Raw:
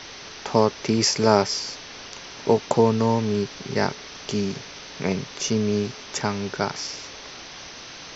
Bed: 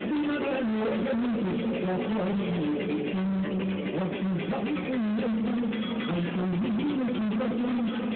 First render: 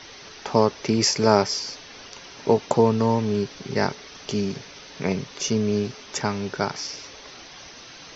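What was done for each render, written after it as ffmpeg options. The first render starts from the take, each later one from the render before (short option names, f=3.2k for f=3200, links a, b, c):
-af "afftdn=nr=6:nf=-40"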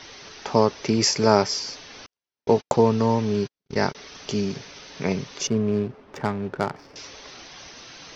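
-filter_complex "[0:a]asettb=1/sr,asplit=3[a][b][c];[a]atrim=end=2.064[d];[b]atrim=start=2.06:end=3.95,asetpts=PTS-STARTPTS,afade=t=in:d=0.004:c=qsin,afade=t=out:st=1.886:d=0.004:c=qsin,agate=range=-52dB:threshold=-30dB:ratio=16:release=100:detection=peak[e];[c]atrim=start=3.946[f];[d][e]acrossfade=d=0.004:c1=hsin:c2=qsin[g];[g][f]acrossfade=d=0.004:c1=qsin:c2=hsin,asettb=1/sr,asplit=3[h][i][j];[h]atrim=end=5.474[k];[i]atrim=start=5.47:end=6.96,asetpts=PTS-STARTPTS,afade=t=in:d=0.004:c=qsin,afade=t=out:st=1.486:d=0.004:c=qsin,adynamicsmooth=sensitivity=1.5:basefreq=930[l];[j]atrim=start=6.956[m];[k][l]acrossfade=d=0.004:c1=hsin:c2=qsin[n];[n][m]acrossfade=d=0.004:c1=qsin:c2=hsin"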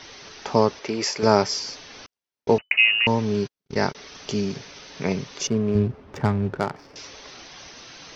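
-filter_complex "[0:a]asettb=1/sr,asplit=3[a][b][c];[a]atrim=end=0.794[d];[b]atrim=start=0.79:end=1.23,asetpts=PTS-STARTPTS,afade=t=in:d=0.004:c=qsin,afade=t=out:st=0.436:d=0.004:c=qsin,bass=f=250:g=-14,treble=f=4k:g=-7[e];[c]atrim=start=1.226[f];[d][e]acrossfade=d=0.004:c1=hsin:c2=qsin[g];[g][f]acrossfade=d=0.004:c1=qsin:c2=hsin,asettb=1/sr,asplit=3[h][i][j];[h]atrim=end=2.584[k];[i]atrim=start=2.58:end=3.07,asetpts=PTS-STARTPTS,afade=t=in:d=0.004:c=qsin,afade=t=out:st=0.486:d=0.004:c=qsin,lowpass=f=2.6k:t=q:w=0.5098,lowpass=f=2.6k:t=q:w=0.6013,lowpass=f=2.6k:t=q:w=0.9,lowpass=f=2.6k:t=q:w=2.563,afreqshift=-3000[l];[j]atrim=start=3.066[m];[k][l]acrossfade=d=0.004:c1=hsin:c2=qsin[n];[n][m]acrossfade=d=0.004:c1=qsin:c2=hsin,asettb=1/sr,asplit=3[o][p][q];[o]atrim=end=5.754[r];[p]atrim=start=5.75:end=6.58,asetpts=PTS-STARTPTS,afade=t=in:d=0.004:c=qsin,afade=t=out:st=0.826:d=0.004:c=qsin,equalizer=f=73:t=o:w=2.1:g=13[s];[q]atrim=start=6.576[t];[r][s]acrossfade=d=0.004:c1=hsin:c2=qsin[u];[u][t]acrossfade=d=0.004:c1=qsin:c2=hsin"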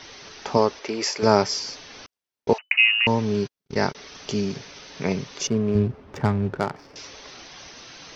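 -filter_complex "[0:a]asettb=1/sr,asplit=3[a][b][c];[a]atrim=end=0.574[d];[b]atrim=start=0.57:end=1.22,asetpts=PTS-STARTPTS,afade=t=in:d=0.004:c=qsin,afade=t=out:st=0.646:d=0.004:c=qsin,equalizer=f=140:t=o:w=0.77:g=-12[e];[c]atrim=start=1.216[f];[d][e]acrossfade=d=0.004:c1=hsin:c2=qsin[g];[g][f]acrossfade=d=0.004:c1=qsin:c2=hsin,asettb=1/sr,asplit=3[h][i][j];[h]atrim=end=2.534[k];[i]atrim=start=2.53:end=3.07,asetpts=PTS-STARTPTS,afade=t=in:d=0.004:c=qsin,afade=t=out:st=0.536:d=0.004:c=qsin,highpass=f=810:w=0.5412,highpass=f=810:w=1.3066[l];[j]atrim=start=3.066[m];[k][l]acrossfade=d=0.004:c1=hsin:c2=qsin[n];[n][m]acrossfade=d=0.004:c1=qsin:c2=hsin"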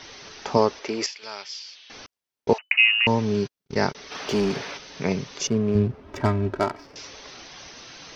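-filter_complex "[0:a]asettb=1/sr,asplit=3[a][b][c];[a]atrim=end=1.064[d];[b]atrim=start=1.06:end=1.9,asetpts=PTS-STARTPTS,afade=t=in:d=0.004:c=qsin,afade=t=out:st=0.836:d=0.004:c=qsin,bandpass=f=3.2k:t=q:w=2.6[e];[c]atrim=start=1.896[f];[d][e]acrossfade=d=0.004:c1=hsin:c2=qsin[g];[g][f]acrossfade=d=0.004:c1=qsin:c2=hsin,asplit=3[h][i][j];[h]afade=t=out:st=4.1:d=0.02[k];[i]asplit=2[l][m];[m]highpass=f=720:p=1,volume=21dB,asoftclip=type=tanh:threshold=-13dB[n];[l][n]amix=inputs=2:normalize=0,lowpass=f=1.5k:p=1,volume=-6dB,afade=t=in:st=4.1:d=0.02,afade=t=out:st=4.76:d=0.02[o];[j]afade=t=in:st=4.76:d=0.02[p];[k][o][p]amix=inputs=3:normalize=0,asettb=1/sr,asplit=3[q][r][s];[q]atrim=end=6.044[t];[r]atrim=start=6.04:end=6.85,asetpts=PTS-STARTPTS,afade=t=in:d=0.004:c=qsin,afade=t=out:st=0.806:d=0.004:c=qsin,aecho=1:1:3.1:0.76,atrim=end_sample=35721[u];[s]atrim=start=6.846[v];[t][u]acrossfade=d=0.004:c1=hsin:c2=qsin[w];[w][v]acrossfade=d=0.004:c1=qsin:c2=hsin"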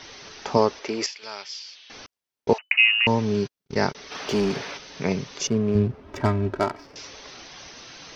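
-af anull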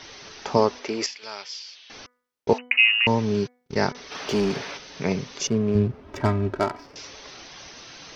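-af "bandreject=f=246.8:t=h:w=4,bandreject=f=493.6:t=h:w=4,bandreject=f=740.4:t=h:w=4,bandreject=f=987.2:t=h:w=4,bandreject=f=1.234k:t=h:w=4,bandreject=f=1.4808k:t=h:w=4,bandreject=f=1.7276k:t=h:w=4,bandreject=f=1.9744k:t=h:w=4,bandreject=f=2.2212k:t=h:w=4"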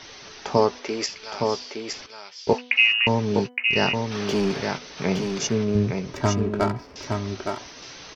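-filter_complex "[0:a]asplit=2[a][b];[b]adelay=16,volume=-13dB[c];[a][c]amix=inputs=2:normalize=0,asplit=2[d][e];[e]aecho=0:1:865:0.562[f];[d][f]amix=inputs=2:normalize=0"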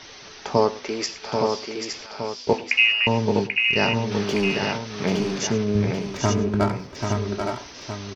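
-af "aecho=1:1:105|787:0.126|0.501"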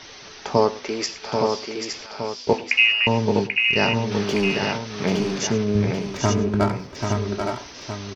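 -af "volume=1dB"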